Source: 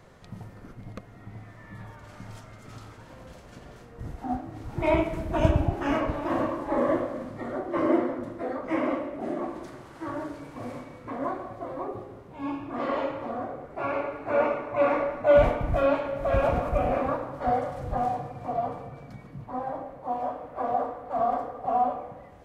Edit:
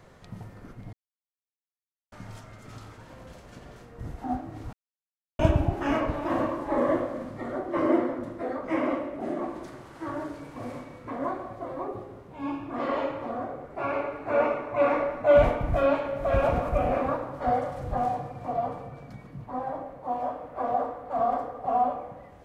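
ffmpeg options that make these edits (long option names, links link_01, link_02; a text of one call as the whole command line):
ffmpeg -i in.wav -filter_complex "[0:a]asplit=5[link_01][link_02][link_03][link_04][link_05];[link_01]atrim=end=0.93,asetpts=PTS-STARTPTS,afade=type=out:start_time=0.926:duration=0.004:curve=hsin[link_06];[link_02]atrim=start=0.93:end=2.12,asetpts=PTS-STARTPTS,volume=0[link_07];[link_03]atrim=start=2.12:end=4.73,asetpts=PTS-STARTPTS,afade=type=in:duration=0.004:curve=hsin,afade=type=out:start_time=2.606:duration=0.004:curve=hsin[link_08];[link_04]atrim=start=4.73:end=5.39,asetpts=PTS-STARTPTS,volume=0[link_09];[link_05]atrim=start=5.39,asetpts=PTS-STARTPTS,afade=type=in:duration=0.004:curve=hsin[link_10];[link_06][link_07][link_08][link_09][link_10]concat=n=5:v=0:a=1" out.wav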